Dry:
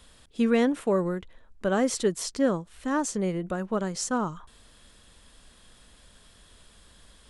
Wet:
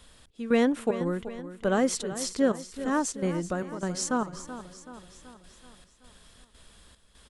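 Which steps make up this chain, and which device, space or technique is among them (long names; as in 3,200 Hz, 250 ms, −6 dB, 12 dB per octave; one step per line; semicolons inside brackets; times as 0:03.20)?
trance gate with a delay (gate pattern "xxx..xxxx.x" 149 BPM −12 dB; repeating echo 379 ms, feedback 54%, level −13 dB)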